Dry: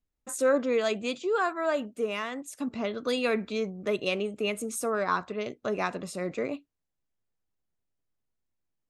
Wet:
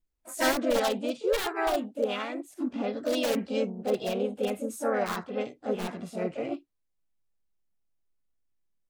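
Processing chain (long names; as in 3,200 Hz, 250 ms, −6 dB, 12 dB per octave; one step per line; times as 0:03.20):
wrap-around overflow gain 19.5 dB
harmonic and percussive parts rebalanced percussive −15 dB
pitch-shifted copies added +3 semitones −4 dB, +4 semitones −7 dB, +5 semitones −13 dB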